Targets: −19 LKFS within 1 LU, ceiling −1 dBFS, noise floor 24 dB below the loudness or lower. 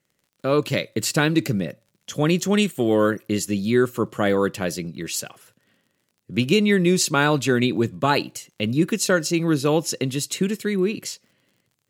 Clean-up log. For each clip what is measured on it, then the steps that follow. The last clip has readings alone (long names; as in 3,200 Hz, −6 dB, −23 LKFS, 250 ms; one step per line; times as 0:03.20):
crackle rate 45 per second; integrated loudness −22.0 LKFS; sample peak −4.5 dBFS; target loudness −19.0 LKFS
→ click removal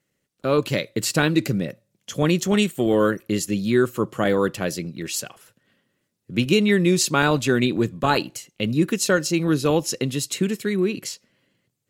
crackle rate 0.76 per second; integrated loudness −22.0 LKFS; sample peak −4.5 dBFS; target loudness −19.0 LKFS
→ level +3 dB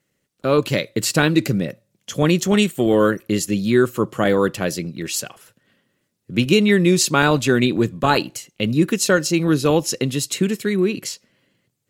integrated loudness −19.0 LKFS; sample peak −1.5 dBFS; background noise floor −73 dBFS